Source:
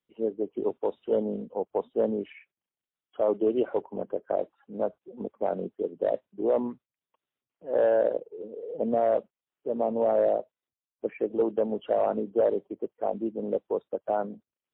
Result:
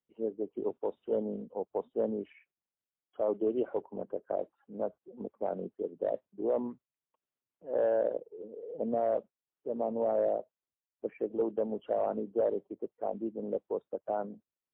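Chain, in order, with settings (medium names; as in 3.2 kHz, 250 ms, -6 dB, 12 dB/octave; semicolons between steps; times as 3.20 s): treble shelf 2.2 kHz -9 dB; trim -5 dB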